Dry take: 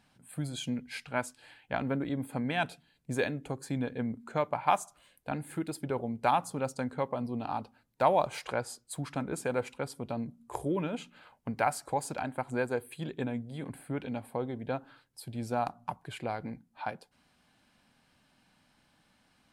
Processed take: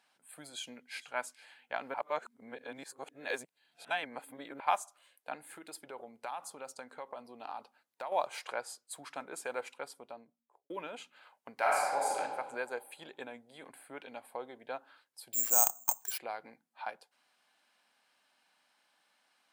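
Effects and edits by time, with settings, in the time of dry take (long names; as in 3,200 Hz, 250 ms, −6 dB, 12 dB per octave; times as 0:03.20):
0:00.51–0:01.11: delay throw 450 ms, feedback 15%, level −18 dB
0:01.94–0:04.60: reverse
0:05.34–0:08.12: downward compressor, threshold −32 dBFS
0:09.74–0:10.70: fade out and dull
0:11.55–0:12.18: thrown reverb, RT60 1.6 s, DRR −4.5 dB
0:15.33–0:16.18: bad sample-rate conversion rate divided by 6×, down none, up zero stuff
whole clip: high-pass filter 600 Hz 12 dB per octave; level −2.5 dB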